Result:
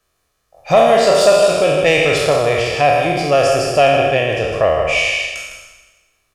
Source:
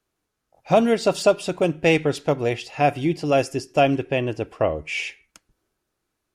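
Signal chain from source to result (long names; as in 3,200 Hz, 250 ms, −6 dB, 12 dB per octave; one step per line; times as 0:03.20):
peak hold with a decay on every bin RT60 1.23 s
comb filter 1.7 ms, depth 44%
on a send: single-tap delay 157 ms −8 dB
on the sum: soft clipping −2.5 dBFS, distortion −25 dB
in parallel at +0.5 dB: downward compressor, threshold −23 dBFS, peak gain reduction 13.5 dB
on the sum: parametric band 200 Hz −6 dB 2.7 octaves
level +2.5 dB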